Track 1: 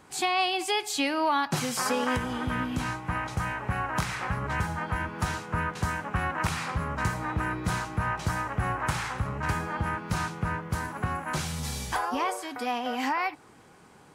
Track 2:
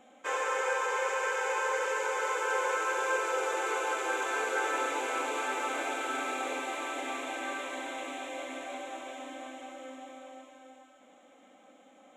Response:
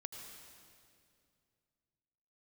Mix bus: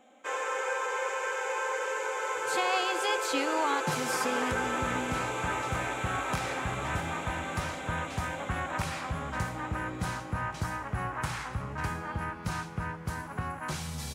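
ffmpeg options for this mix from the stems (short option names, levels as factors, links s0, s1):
-filter_complex "[0:a]adelay=2350,volume=0.473,asplit=2[s0][s1];[s1]volume=0.422[s2];[1:a]volume=0.668,asplit=2[s3][s4];[s4]volume=0.501[s5];[2:a]atrim=start_sample=2205[s6];[s2][s5]amix=inputs=2:normalize=0[s7];[s7][s6]afir=irnorm=-1:irlink=0[s8];[s0][s3][s8]amix=inputs=3:normalize=0"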